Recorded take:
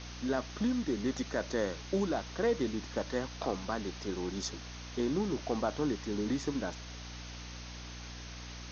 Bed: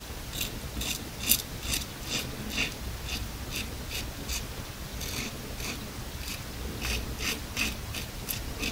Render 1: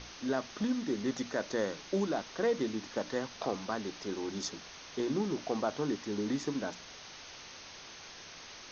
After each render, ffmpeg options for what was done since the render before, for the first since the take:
-af "bandreject=f=60:t=h:w=6,bandreject=f=120:t=h:w=6,bandreject=f=180:t=h:w=6,bandreject=f=240:t=h:w=6,bandreject=f=300:t=h:w=6"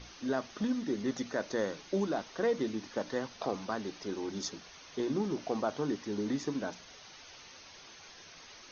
-af "afftdn=nr=7:nf=-50"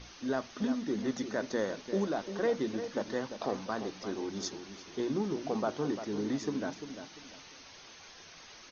-filter_complex "[0:a]asplit=2[a][b];[b]adelay=346,lowpass=f=2.3k:p=1,volume=-9.5dB,asplit=2[c][d];[d]adelay=346,lowpass=f=2.3k:p=1,volume=0.3,asplit=2[e][f];[f]adelay=346,lowpass=f=2.3k:p=1,volume=0.3[g];[a][c][e][g]amix=inputs=4:normalize=0"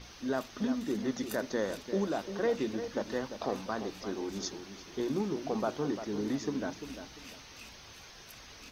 -filter_complex "[1:a]volume=-22dB[a];[0:a][a]amix=inputs=2:normalize=0"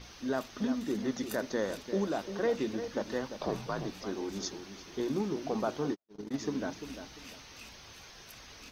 -filter_complex "[0:a]asettb=1/sr,asplit=3[a][b][c];[a]atrim=end=3.394[d];[b]atrim=start=3.39:end=3.93,asetpts=PTS-STARTPTS,afade=t=in:d=0.004:c=qsin,afade=t=out:st=0.536:d=0.004:c=qsin,afreqshift=-65[e];[c]atrim=start=3.926[f];[d][e]acrossfade=d=0.004:c1=hsin:c2=qsin[g];[g][f]acrossfade=d=0.004:c1=qsin:c2=hsin,asplit=3[h][i][j];[h]afade=t=out:st=5.92:d=0.02[k];[i]agate=range=-58dB:threshold=-32dB:ratio=16:release=100:detection=peak,afade=t=in:st=5.92:d=0.02,afade=t=out:st=6.37:d=0.02[l];[j]afade=t=in:st=6.37:d=0.02[m];[k][l][m]amix=inputs=3:normalize=0"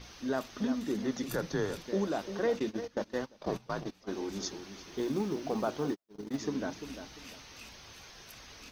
-filter_complex "[0:a]asettb=1/sr,asplit=3[a][b][c];[a]atrim=end=1.264[d];[b]atrim=start=1.26:end=1.86,asetpts=PTS-STARTPTS,afade=t=in:d=0.004:c=qsin,afade=t=out:st=0.596:d=0.004:c=qsin,afreqshift=-87[e];[c]atrim=start=1.856[f];[d][e]acrossfade=d=0.004:c1=hsin:c2=qsin[g];[g][f]acrossfade=d=0.004:c1=qsin:c2=hsin,asplit=3[h][i][j];[h]afade=t=out:st=2.58:d=0.02[k];[i]agate=range=-16dB:threshold=-37dB:ratio=16:release=100:detection=peak,afade=t=in:st=2.58:d=0.02,afade=t=out:st=4.1:d=0.02[l];[j]afade=t=in:st=4.1:d=0.02[m];[k][l][m]amix=inputs=3:normalize=0,asettb=1/sr,asplit=3[n][o][p];[n]atrim=end=4.894[q];[o]atrim=start=4.89:end=6.4,asetpts=PTS-STARTPTS,afade=t=in:d=0.004:c=qsin,afade=t=out:st=1.506:d=0.004:c=qsin,acrusher=bits=8:mode=log:mix=0:aa=0.000001[r];[p]atrim=start=6.396[s];[q][r]acrossfade=d=0.004:c1=hsin:c2=qsin[t];[t][s]acrossfade=d=0.004:c1=qsin:c2=hsin"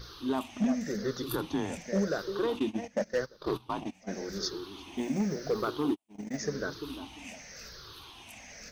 -af "afftfilt=real='re*pow(10,15/40*sin(2*PI*(0.59*log(max(b,1)*sr/1024/100)/log(2)-(-0.9)*(pts-256)/sr)))':imag='im*pow(10,15/40*sin(2*PI*(0.59*log(max(b,1)*sr/1024/100)/log(2)-(-0.9)*(pts-256)/sr)))':win_size=1024:overlap=0.75,volume=22dB,asoftclip=hard,volume=-22dB"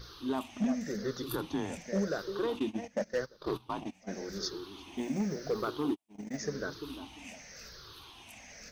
-af "volume=-2.5dB"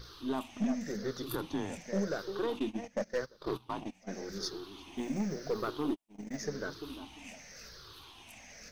-af "aeval=exprs='if(lt(val(0),0),0.708*val(0),val(0))':c=same"

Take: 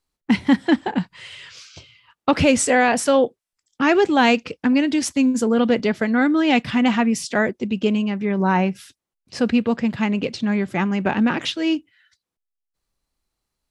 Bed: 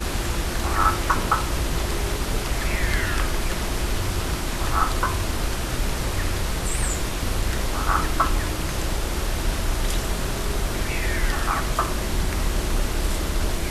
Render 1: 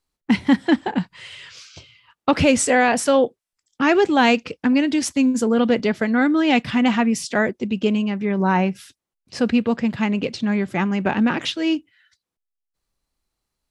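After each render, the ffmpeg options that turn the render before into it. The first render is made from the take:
-af anull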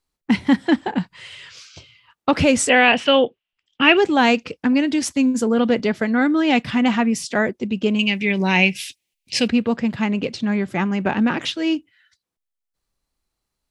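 -filter_complex "[0:a]asettb=1/sr,asplit=3[a][b][c];[a]atrim=end=2.694[d];[b]atrim=start=2.69:end=3.97,asetpts=PTS-STARTPTS,afade=t=in:d=0.004:c=qsin,afade=t=out:st=1.276:d=0.004:c=qsin,lowpass=f=2.9k:t=q:w=6.5[e];[c]atrim=start=3.966[f];[d][e]acrossfade=d=0.004:c1=hsin:c2=qsin[g];[g][f]acrossfade=d=0.004:c1=qsin:c2=hsin,asettb=1/sr,asplit=3[h][i][j];[h]atrim=end=7.994[k];[i]atrim=start=7.99:end=9.48,asetpts=PTS-STARTPTS,afade=t=in:d=0.004:c=qsin,afade=t=out:st=1.486:d=0.004:c=qsin,highshelf=f=1.8k:t=q:w=3:g=10.5[l];[j]atrim=start=9.476[m];[k][l]acrossfade=d=0.004:c1=hsin:c2=qsin[n];[n][m]acrossfade=d=0.004:c1=qsin:c2=hsin"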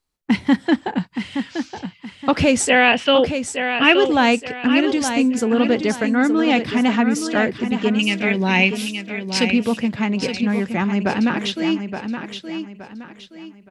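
-af "aecho=1:1:871|1742|2613|3484:0.398|0.135|0.046|0.0156"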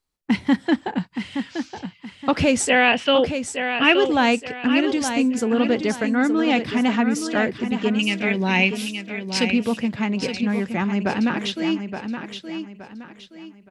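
-af "volume=-2.5dB"

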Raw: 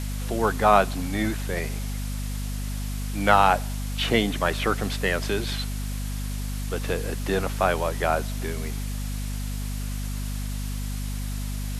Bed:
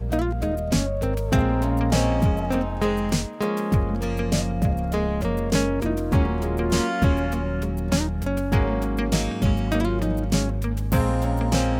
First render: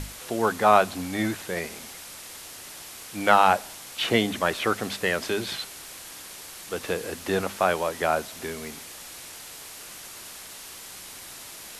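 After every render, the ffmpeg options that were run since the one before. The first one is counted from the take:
-af "bandreject=f=50:t=h:w=6,bandreject=f=100:t=h:w=6,bandreject=f=150:t=h:w=6,bandreject=f=200:t=h:w=6,bandreject=f=250:t=h:w=6"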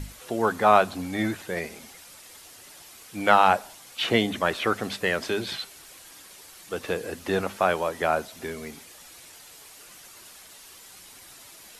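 -af "afftdn=nr=8:nf=-42"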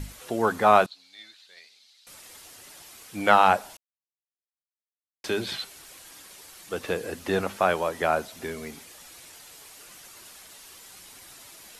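-filter_complex "[0:a]asettb=1/sr,asplit=3[a][b][c];[a]atrim=end=0.864[d];[b]atrim=start=0.86:end=2.07,asetpts=PTS-STARTPTS,afade=t=in:d=0.004:c=qsin,afade=t=out:st=1.206:d=0.004:c=qsin,bandpass=f=4.1k:t=q:w=4.9[e];[c]atrim=start=2.066[f];[d][e]acrossfade=d=0.004:c1=hsin:c2=qsin[g];[g][f]acrossfade=d=0.004:c1=qsin:c2=hsin,asplit=3[h][i][j];[h]atrim=end=3.77,asetpts=PTS-STARTPTS,afade=t=out:st=3.766:d=0.004:c=hsin[k];[i]atrim=start=3.77:end=5.24,asetpts=PTS-STARTPTS,volume=0[l];[j]atrim=start=5.24,asetpts=PTS-STARTPTS,afade=t=in:d=0.004:c=hsin[m];[k][l][m]concat=n=3:v=0:a=1"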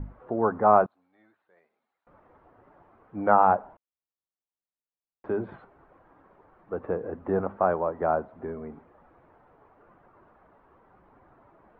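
-af "lowpass=f=1.2k:w=0.5412,lowpass=f=1.2k:w=1.3066"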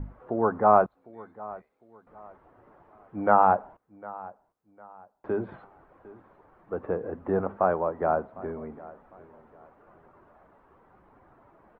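-af "aecho=1:1:754|1508|2262:0.1|0.033|0.0109"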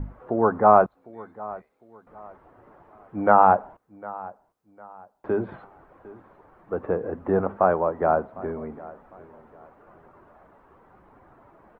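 -af "volume=4dB,alimiter=limit=-2dB:level=0:latency=1"

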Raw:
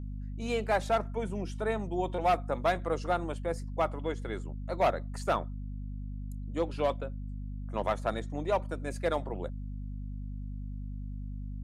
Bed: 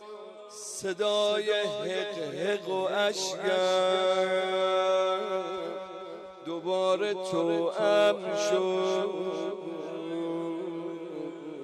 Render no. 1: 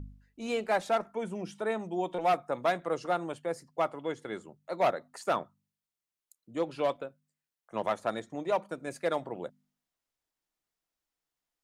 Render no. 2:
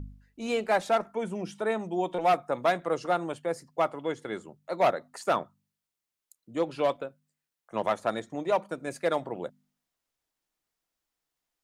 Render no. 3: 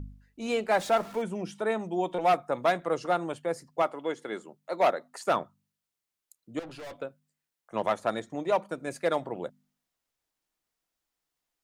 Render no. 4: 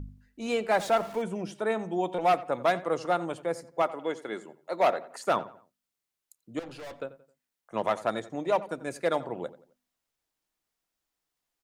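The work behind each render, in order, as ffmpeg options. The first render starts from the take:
-af "bandreject=f=50:t=h:w=4,bandreject=f=100:t=h:w=4,bandreject=f=150:t=h:w=4,bandreject=f=200:t=h:w=4,bandreject=f=250:t=h:w=4"
-af "volume=3dB"
-filter_complex "[0:a]asettb=1/sr,asplit=3[a][b][c];[a]atrim=end=0.774[d];[b]atrim=start=0.77:end=1.22,asetpts=PTS-STARTPTS,afade=t=in:d=0.004:c=qsin,afade=t=out:st=0.446:d=0.004:c=qsin,aeval=exprs='val(0)+0.5*0.00944*sgn(val(0))':c=same[e];[c]atrim=start=1.216[f];[d][e]acrossfade=d=0.004:c1=hsin:c2=qsin[g];[g][f]acrossfade=d=0.004:c1=qsin:c2=hsin,asettb=1/sr,asplit=3[h][i][j];[h]atrim=end=3.824[k];[i]atrim=start=3.82:end=5.27,asetpts=PTS-STARTPTS,afade=t=in:d=0.004:c=qsin,afade=t=out:st=1.446:d=0.004:c=qsin,highpass=220[l];[j]atrim=start=5.266[m];[k][l]acrossfade=d=0.004:c1=hsin:c2=qsin[n];[n][m]acrossfade=d=0.004:c1=qsin:c2=hsin,asettb=1/sr,asplit=3[o][p][q];[o]atrim=end=6.594[r];[p]atrim=start=6.59:end=7.02,asetpts=PTS-STARTPTS,afade=t=in:d=0.004:c=qsin,afade=t=out:st=0.426:d=0.004:c=qsin,aeval=exprs='(tanh(100*val(0)+0.2)-tanh(0.2))/100':c=same[s];[q]atrim=start=7.016[t];[r][s]acrossfade=d=0.004:c1=hsin:c2=qsin[u];[u][t]acrossfade=d=0.004:c1=qsin:c2=hsin"
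-filter_complex "[0:a]asplit=2[a][b];[b]adelay=88,lowpass=f=2.6k:p=1,volume=-16.5dB,asplit=2[c][d];[d]adelay=88,lowpass=f=2.6k:p=1,volume=0.39,asplit=2[e][f];[f]adelay=88,lowpass=f=2.6k:p=1,volume=0.39[g];[a][c][e][g]amix=inputs=4:normalize=0"

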